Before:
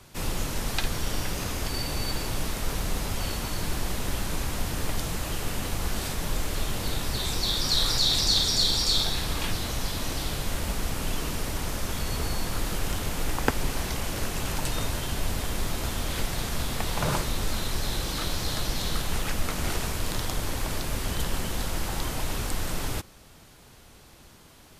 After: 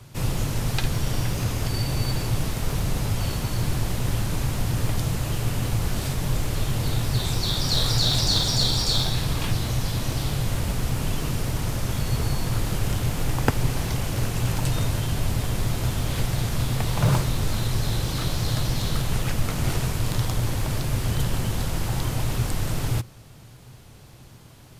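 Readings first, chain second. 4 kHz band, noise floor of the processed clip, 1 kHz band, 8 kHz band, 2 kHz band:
0.0 dB, -46 dBFS, +1.0 dB, 0.0 dB, 0.0 dB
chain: peaking EQ 120 Hz +13.5 dB 0.62 oct; in parallel at -11.5 dB: sample-rate reducer 2.2 kHz

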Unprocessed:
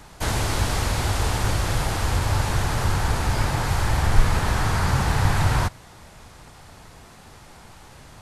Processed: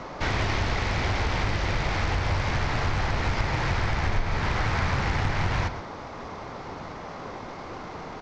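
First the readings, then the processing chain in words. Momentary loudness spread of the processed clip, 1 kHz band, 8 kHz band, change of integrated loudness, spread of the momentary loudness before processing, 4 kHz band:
12 LU, -2.5 dB, -12.0 dB, -4.5 dB, 3 LU, -3.5 dB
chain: CVSD coder 32 kbps; peaking EQ 2.1 kHz +8.5 dB 0.32 oct; hum notches 60/120 Hz; compression 4:1, threshold -22 dBFS, peak gain reduction 12 dB; band noise 84–1200 Hz -39 dBFS; delay 127 ms -12 dB; loudspeaker Doppler distortion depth 0.48 ms

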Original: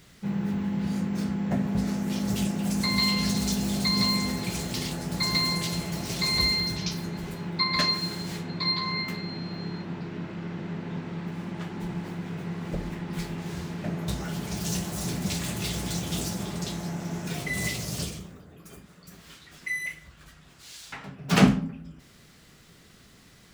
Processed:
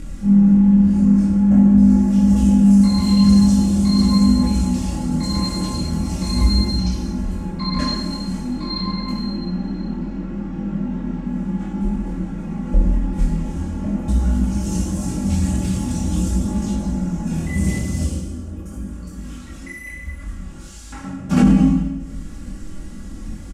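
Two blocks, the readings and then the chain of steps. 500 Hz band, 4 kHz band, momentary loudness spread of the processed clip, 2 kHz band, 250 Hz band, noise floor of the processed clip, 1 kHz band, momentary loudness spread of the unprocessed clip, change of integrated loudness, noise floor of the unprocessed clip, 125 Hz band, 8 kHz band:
+3.0 dB, -2.0 dB, 21 LU, -5.0 dB, +14.0 dB, -34 dBFS, +3.0 dB, 13 LU, +10.0 dB, -54 dBFS, +10.5 dB, +1.5 dB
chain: graphic EQ 125/500/1000/2000/4000/8000 Hz -4/-7/-5/-7/-11/+4 dB; upward compressor, threshold -38 dBFS; Chebyshev low-pass 9.9 kHz, order 2; comb 3.6 ms, depth 74%; Schroeder reverb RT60 1.1 s, combs from 33 ms, DRR 1 dB; chorus voices 2, 0.45 Hz, delay 23 ms, depth 3.2 ms; tilt EQ -3 dB/octave; loudness maximiser +12.5 dB; trim -3.5 dB

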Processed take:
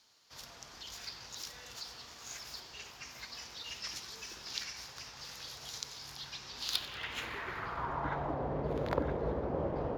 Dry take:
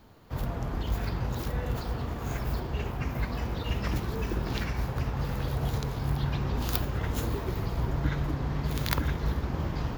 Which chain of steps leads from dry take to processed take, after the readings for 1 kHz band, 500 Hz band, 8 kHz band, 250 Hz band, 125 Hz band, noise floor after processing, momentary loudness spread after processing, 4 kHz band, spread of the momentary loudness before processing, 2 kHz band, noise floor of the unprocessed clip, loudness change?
-3.5 dB, -2.0 dB, +1.5 dB, -9.5 dB, -16.0 dB, -53 dBFS, 11 LU, +1.5 dB, 4 LU, -4.5 dB, -36 dBFS, -8.0 dB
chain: bass shelf 72 Hz +11 dB; band-pass sweep 5.5 kHz -> 530 Hz, 6.47–8.56 s; thinning echo 93 ms, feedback 70%, level -18 dB; trim +8 dB

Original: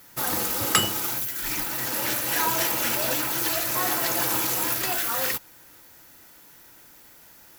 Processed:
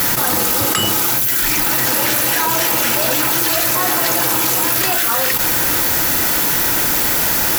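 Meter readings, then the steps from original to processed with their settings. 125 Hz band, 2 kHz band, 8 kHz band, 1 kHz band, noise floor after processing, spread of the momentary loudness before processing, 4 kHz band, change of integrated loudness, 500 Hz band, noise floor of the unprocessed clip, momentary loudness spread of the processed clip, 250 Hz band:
+11.0 dB, +11.0 dB, +11.0 dB, +10.0 dB, -17 dBFS, 5 LU, +10.0 dB, +10.0 dB, +10.0 dB, -51 dBFS, 1 LU, +11.0 dB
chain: level flattener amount 100%

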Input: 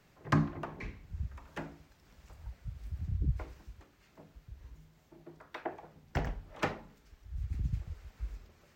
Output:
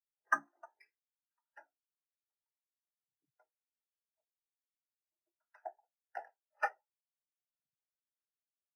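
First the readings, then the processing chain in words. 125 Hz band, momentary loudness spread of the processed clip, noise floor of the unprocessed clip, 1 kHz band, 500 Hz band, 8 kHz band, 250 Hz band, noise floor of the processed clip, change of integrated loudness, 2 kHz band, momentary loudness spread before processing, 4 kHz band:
under -40 dB, 16 LU, -65 dBFS, -0.5 dB, -8.5 dB, no reading, under -25 dB, under -85 dBFS, -1.0 dB, +2.5 dB, 22 LU, -19.5 dB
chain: high-pass 820 Hz 12 dB/octave; careless resampling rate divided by 6×, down filtered, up hold; comb of notches 1.1 kHz; spectral contrast expander 2.5:1; trim +5.5 dB

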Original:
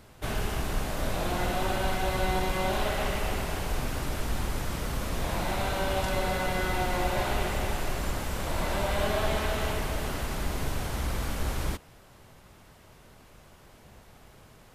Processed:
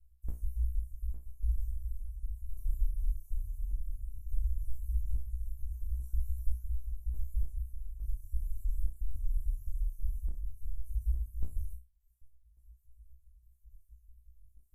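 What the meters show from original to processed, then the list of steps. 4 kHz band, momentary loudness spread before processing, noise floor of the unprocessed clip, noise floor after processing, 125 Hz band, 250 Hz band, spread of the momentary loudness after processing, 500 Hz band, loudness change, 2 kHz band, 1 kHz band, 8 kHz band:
under -40 dB, 5 LU, -55 dBFS, -65 dBFS, -5.5 dB, -30.5 dB, 7 LU, under -40 dB, -9.0 dB, under -40 dB, under -40 dB, -25.0 dB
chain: random holes in the spectrogram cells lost 33%; inverse Chebyshev band-stop 180–5200 Hz, stop band 60 dB; reverb removal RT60 0.81 s; peaking EQ 5.7 kHz +14.5 dB 0.64 oct; gain riding 0.5 s; random-step tremolo 3.5 Hz, depth 70%; chorus 0.16 Hz, delay 16.5 ms, depth 6.4 ms; distance through air 64 m; flutter echo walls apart 5.7 m, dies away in 0.29 s; trim +10.5 dB

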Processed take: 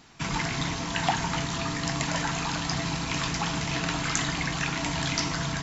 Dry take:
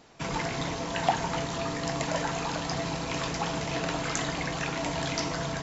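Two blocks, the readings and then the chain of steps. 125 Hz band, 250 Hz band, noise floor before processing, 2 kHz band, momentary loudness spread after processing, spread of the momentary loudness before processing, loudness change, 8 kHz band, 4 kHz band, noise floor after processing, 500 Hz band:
+4.0 dB, +2.0 dB, -35 dBFS, +4.0 dB, 2 LU, 3 LU, +2.5 dB, no reading, +4.5 dB, -33 dBFS, -4.5 dB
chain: peaking EQ 530 Hz -12.5 dB 1 oct; trim +4.5 dB

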